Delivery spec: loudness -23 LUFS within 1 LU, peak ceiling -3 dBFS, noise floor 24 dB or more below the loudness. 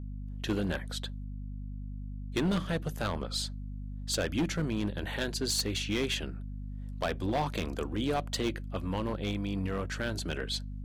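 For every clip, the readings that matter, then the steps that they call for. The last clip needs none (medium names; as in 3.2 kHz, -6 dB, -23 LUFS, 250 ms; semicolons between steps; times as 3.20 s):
clipped samples 1.2%; clipping level -24.0 dBFS; hum 50 Hz; highest harmonic 250 Hz; hum level -37 dBFS; loudness -33.5 LUFS; peak level -24.0 dBFS; loudness target -23.0 LUFS
-> clip repair -24 dBFS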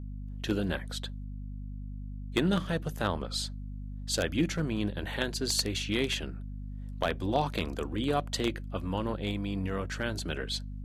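clipped samples 0.0%; hum 50 Hz; highest harmonic 250 Hz; hum level -36 dBFS
-> de-hum 50 Hz, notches 5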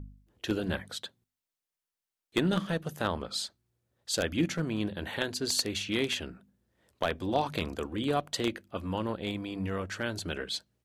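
hum not found; loudness -32.5 LUFS; peak level -13.5 dBFS; loudness target -23.0 LUFS
-> trim +9.5 dB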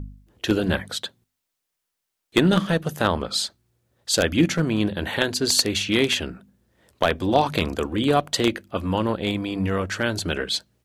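loudness -23.0 LUFS; peak level -4.0 dBFS; noise floor -81 dBFS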